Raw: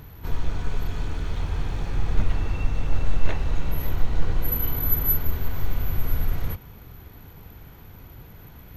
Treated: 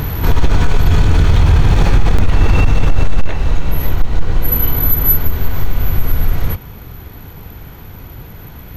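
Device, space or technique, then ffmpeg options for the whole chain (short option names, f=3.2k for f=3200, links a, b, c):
loud club master: -filter_complex "[0:a]asettb=1/sr,asplit=3[a][b][c];[a]atrim=end=0.804[d];[b]atrim=start=0.8:end=1.75,asetpts=PTS-STARTPTS,afade=t=in:d=0.004:c=qsin,afade=t=out:st=0.946:d=0.004:c=qsin,equalizer=f=97:t=o:w=1.4:g=6[e];[c]atrim=start=1.746[f];[d][e]acrossfade=d=0.004:c1=hsin:c2=qsin[g];[g][f]acrossfade=d=0.004:c1=qsin:c2=hsin,acompressor=threshold=-17dB:ratio=3,asoftclip=type=hard:threshold=-14dB,alimiter=level_in=25dB:limit=-1dB:release=50:level=0:latency=1,volume=-1.5dB"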